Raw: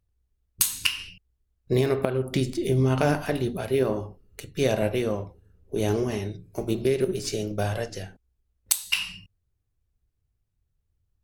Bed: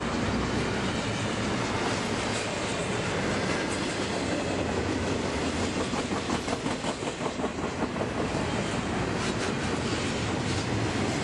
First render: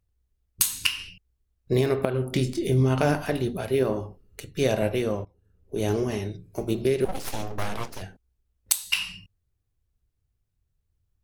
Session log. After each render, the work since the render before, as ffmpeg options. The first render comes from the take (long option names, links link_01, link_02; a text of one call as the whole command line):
ffmpeg -i in.wav -filter_complex "[0:a]asettb=1/sr,asplit=3[link_01][link_02][link_03];[link_01]atrim=end=2.114[link_04];[link_02]atrim=start=2.11:end=2.84,asetpts=PTS-STARTPTS,afade=type=in:duration=0.004:curve=qsin,afade=type=out:start_time=0.726:duration=0.004:curve=qsin,asplit=2[link_05][link_06];[link_06]adelay=24,volume=-9dB[link_07];[link_05][link_07]amix=inputs=2:normalize=0,atrim=end_sample=32193[link_08];[link_03]atrim=start=2.836[link_09];[link_04][link_08]acrossfade=duration=0.004:curve1=hsin:curve2=qsin[link_10];[link_10][link_09]acrossfade=duration=0.004:curve1=qsin:curve2=hsin,asettb=1/sr,asplit=3[link_11][link_12][link_13];[link_11]atrim=end=7.054[link_14];[link_12]atrim=start=7.05:end=8.02,asetpts=PTS-STARTPTS,afade=type=in:duration=0.004:curve=qsin,afade=type=out:start_time=0.966:duration=0.004:curve=qsin,aeval=exprs='abs(val(0))':channel_layout=same[link_15];[link_13]atrim=start=8.016[link_16];[link_14][link_15]acrossfade=duration=0.004:curve1=hsin:curve2=qsin[link_17];[link_17][link_16]acrossfade=duration=0.004:curve1=qsin:curve2=hsin,asplit=2[link_18][link_19];[link_18]atrim=end=5.25,asetpts=PTS-STARTPTS,afade=type=out:start_time=5.246:duration=0.004:curve=hsin:silence=0.133352[link_20];[link_19]atrim=start=5.25,asetpts=PTS-STARTPTS,afade=type=in:duration=0.87:curve=qsin:silence=0.133352[link_21];[link_20][link_21]concat=n=2:v=0:a=1" out.wav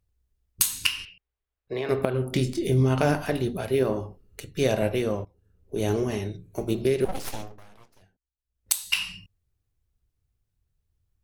ffmpeg -i in.wav -filter_complex "[0:a]asettb=1/sr,asplit=3[link_01][link_02][link_03];[link_01]atrim=end=1.054[link_04];[link_02]atrim=start=1.05:end=1.89,asetpts=PTS-STARTPTS,afade=type=in:duration=0.004:curve=qsin,afade=type=out:start_time=0.836:duration=0.004:curve=qsin,acrossover=split=460 3600:gain=0.158 1 0.0708[link_05][link_06][link_07];[link_05][link_06][link_07]amix=inputs=3:normalize=0[link_08];[link_03]atrim=start=1.886[link_09];[link_04][link_08]acrossfade=duration=0.004:curve1=hsin:curve2=qsin[link_10];[link_10][link_09]acrossfade=duration=0.004:curve1=qsin:curve2=hsin,asettb=1/sr,asplit=3[link_11][link_12][link_13];[link_11]atrim=end=5.844[link_14];[link_12]atrim=start=5.84:end=6.66,asetpts=PTS-STARTPTS,afade=type=in:duration=0.004:curve=qsin,afade=type=out:start_time=0.816:duration=0.004:curve=qsin,asuperstop=centerf=5000:order=4:qfactor=7.4[link_15];[link_13]atrim=start=6.656[link_16];[link_14][link_15]acrossfade=duration=0.004:curve1=hsin:curve2=qsin[link_17];[link_17][link_16]acrossfade=duration=0.004:curve1=qsin:curve2=hsin,asplit=3[link_18][link_19][link_20];[link_18]atrim=end=7.6,asetpts=PTS-STARTPTS,afade=type=out:start_time=7.24:duration=0.36:silence=0.0794328[link_21];[link_19]atrim=start=7.6:end=8.42,asetpts=PTS-STARTPTS,volume=-22dB[link_22];[link_20]atrim=start=8.42,asetpts=PTS-STARTPTS,afade=type=in:duration=0.36:silence=0.0794328[link_23];[link_21][link_22][link_23]concat=n=3:v=0:a=1" out.wav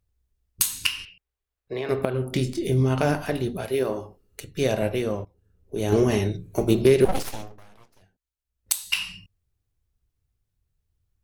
ffmpeg -i in.wav -filter_complex "[0:a]asettb=1/sr,asplit=3[link_01][link_02][link_03];[link_01]atrim=end=3.654[link_04];[link_02]atrim=start=3.65:end=4.41,asetpts=PTS-STARTPTS,afade=type=in:duration=0.004:curve=qsin,afade=type=out:start_time=0.756:duration=0.004:curve=qsin,bass=frequency=250:gain=-7,treble=frequency=4000:gain=3[link_05];[link_03]atrim=start=4.406[link_06];[link_04][link_05]acrossfade=duration=0.004:curve1=hsin:curve2=qsin[link_07];[link_07][link_06]acrossfade=duration=0.004:curve1=qsin:curve2=hsin,asettb=1/sr,asplit=3[link_08][link_09][link_10];[link_08]atrim=end=5.924[link_11];[link_09]atrim=start=5.92:end=7.23,asetpts=PTS-STARTPTS,afade=type=in:duration=0.004:curve=qsin,afade=type=out:start_time=1.306:duration=0.004:curve=qsin,acontrast=77[link_12];[link_10]atrim=start=7.226[link_13];[link_11][link_12]acrossfade=duration=0.004:curve1=hsin:curve2=qsin[link_14];[link_14][link_13]acrossfade=duration=0.004:curve1=qsin:curve2=hsin" out.wav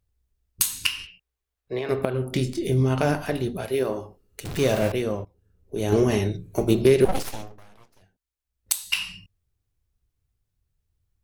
ffmpeg -i in.wav -filter_complex "[0:a]asettb=1/sr,asplit=3[link_01][link_02][link_03];[link_01]atrim=end=1.024[link_04];[link_02]atrim=start=1.02:end=1.79,asetpts=PTS-STARTPTS,afade=type=in:duration=0.004:curve=qsin,afade=type=out:start_time=0.766:duration=0.004:curve=qsin,asplit=2[link_05][link_06];[link_06]adelay=16,volume=-7dB[link_07];[link_05][link_07]amix=inputs=2:normalize=0,atrim=end_sample=33957[link_08];[link_03]atrim=start=1.786[link_09];[link_04][link_08]acrossfade=duration=0.004:curve1=hsin:curve2=qsin[link_10];[link_10][link_09]acrossfade=duration=0.004:curve1=qsin:curve2=hsin,asettb=1/sr,asplit=3[link_11][link_12][link_13];[link_11]atrim=end=4.454[link_14];[link_12]atrim=start=4.45:end=4.92,asetpts=PTS-STARTPTS,afade=type=in:duration=0.004:curve=qsin,afade=type=out:start_time=0.466:duration=0.004:curve=qsin,aeval=exprs='val(0)+0.5*0.0422*sgn(val(0))':channel_layout=same[link_15];[link_13]atrim=start=4.916[link_16];[link_14][link_15]acrossfade=duration=0.004:curve1=hsin:curve2=qsin[link_17];[link_17][link_16]acrossfade=duration=0.004:curve1=qsin:curve2=hsin" out.wav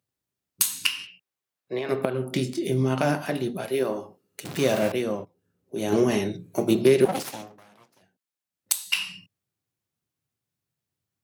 ffmpeg -i in.wav -af "highpass=frequency=140:width=0.5412,highpass=frequency=140:width=1.3066,bandreject=frequency=440:width=12" out.wav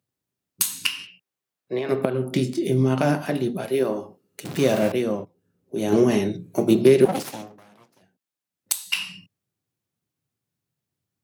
ffmpeg -i in.wav -af "highpass=frequency=220:poles=1,lowshelf=frequency=320:gain=11" out.wav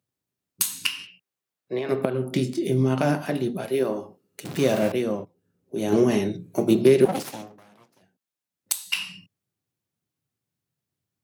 ffmpeg -i in.wav -af "volume=-1.5dB" out.wav